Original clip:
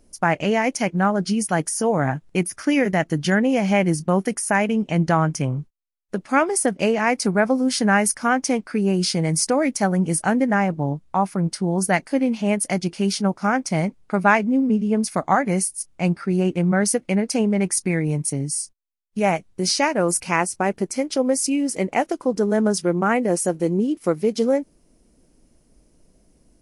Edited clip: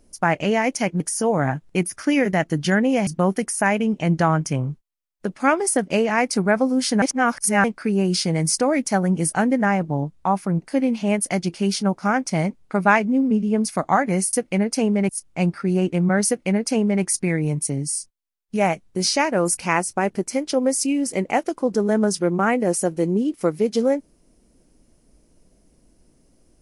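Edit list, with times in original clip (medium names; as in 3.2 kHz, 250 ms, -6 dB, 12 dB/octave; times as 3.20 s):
1.00–1.60 s: delete
3.67–3.96 s: delete
7.91–8.53 s: reverse
11.51–12.01 s: delete
16.90–17.66 s: copy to 15.72 s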